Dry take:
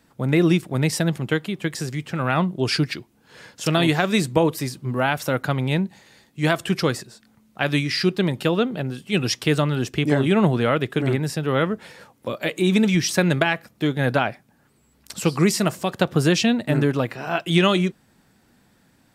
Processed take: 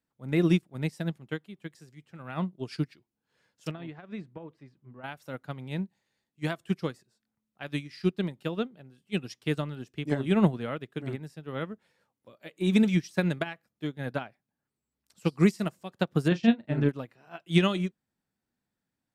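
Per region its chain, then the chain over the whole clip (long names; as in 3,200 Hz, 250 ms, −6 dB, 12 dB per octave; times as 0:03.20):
0:03.71–0:05.04: low-pass filter 2,300 Hz + downward compressor 2.5 to 1, threshold −21 dBFS
0:16.28–0:16.89: high-frequency loss of the air 130 metres + notch filter 3,900 Hz, Q 29 + double-tracking delay 35 ms −7.5 dB
whole clip: dynamic equaliser 200 Hz, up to +4 dB, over −28 dBFS, Q 1.3; expander for the loud parts 2.5 to 1, over −26 dBFS; level −4.5 dB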